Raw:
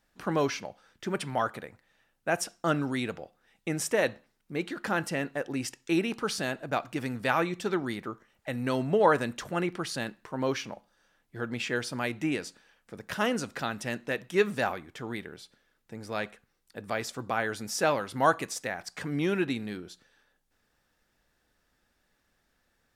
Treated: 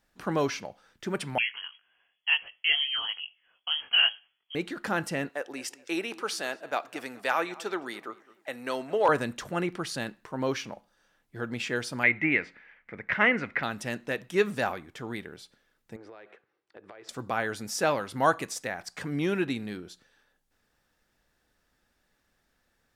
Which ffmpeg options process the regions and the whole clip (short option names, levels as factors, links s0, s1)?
-filter_complex "[0:a]asettb=1/sr,asplit=3[s0][s1][s2];[s0]atrim=end=1.384[s3];[s1]atrim=start=1.38:end=4.55,asetpts=PTS-STARTPTS,afade=t=in:d=0.004:c=qsin,afade=t=out:st=3.166:d=0.004:c=qsin,equalizer=f=590:t=o:w=1.5:g=7.5,flanger=delay=18.5:depth=2.5:speed=1.8,lowpass=f=2900:t=q:w=0.5098,lowpass=f=2900:t=q:w=0.6013,lowpass=f=2900:t=q:w=0.9,lowpass=f=2900:t=q:w=2.563,afreqshift=-3400[s4];[s2]atrim=start=4.546[s5];[s3][s4]acrossfade=d=0.004:c1=hsin:c2=qsin[s6];[s6][s5]acrossfade=d=0.004:c1=qsin:c2=hsin,asettb=1/sr,asplit=3[s7][s8][s9];[s7]atrim=end=5.294[s10];[s8]atrim=start=5.29:end=9.09,asetpts=PTS-STARTPTS,afade=t=in:d=0.004:c=qsin,afade=t=out:st=3.796:d=0.004:c=qsin,highpass=420,asoftclip=type=hard:threshold=0.2,asplit=2[s11][s12];[s12]adelay=213,lowpass=f=2500:p=1,volume=0.106,asplit=2[s13][s14];[s14]adelay=213,lowpass=f=2500:p=1,volume=0.39,asplit=2[s15][s16];[s16]adelay=213,lowpass=f=2500:p=1,volume=0.39[s17];[s11][s13][s15][s17]amix=inputs=4:normalize=0,atrim=end_sample=167580[s18];[s9]atrim=start=9.086[s19];[s10][s18]acrossfade=d=0.004:c1=hsin:c2=qsin[s20];[s20][s19]acrossfade=d=0.004:c1=qsin:c2=hsin,asettb=1/sr,asplit=3[s21][s22][s23];[s21]atrim=end=12.034[s24];[s22]atrim=start=12.03:end=13.63,asetpts=PTS-STARTPTS,afade=t=in:d=0.004:c=qsin,afade=t=out:st=1.596:d=0.004:c=qsin,lowpass=f=2100:t=q:w=8.4,deesser=0.35[s25];[s23]atrim=start=13.626[s26];[s24][s25]acrossfade=d=0.004:c1=hsin:c2=qsin[s27];[s27][s26]acrossfade=d=0.004:c1=qsin:c2=hsin,asettb=1/sr,asplit=3[s28][s29][s30];[s28]atrim=end=15.964[s31];[s29]atrim=start=15.96:end=17.09,asetpts=PTS-STARTPTS,afade=t=in:d=0.004:c=qsin,afade=t=out:st=1.126:d=0.004:c=qsin,highpass=130,lowpass=2600,lowshelf=f=280:t=q:w=3:g=-6,acompressor=threshold=0.00708:ratio=16:attack=3.2:release=140:knee=1:detection=peak[s32];[s30]atrim=start=17.086[s33];[s31][s32]acrossfade=d=0.004:c1=hsin:c2=qsin[s34];[s34][s33]acrossfade=d=0.004:c1=qsin:c2=hsin"